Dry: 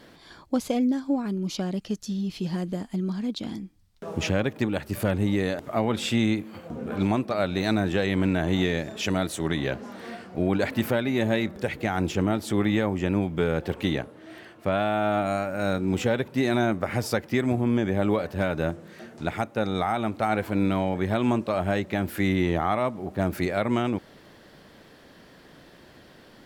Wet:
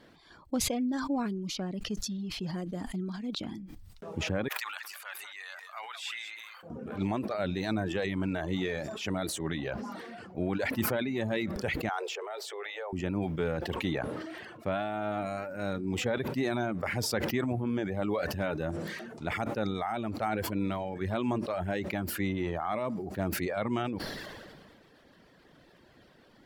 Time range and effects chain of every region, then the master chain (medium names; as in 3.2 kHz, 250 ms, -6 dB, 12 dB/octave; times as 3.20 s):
4.48–6.63 s: high-pass 1.1 kHz 24 dB/octave + delay 191 ms -9.5 dB
11.89–12.93 s: steep high-pass 390 Hz 96 dB/octave + peaking EQ 11 kHz -13.5 dB 0.3 oct + compression 2:1, threshold -30 dBFS
whole clip: treble shelf 5.7 kHz -6 dB; reverb removal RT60 0.8 s; decay stretcher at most 29 dB/s; trim -6.5 dB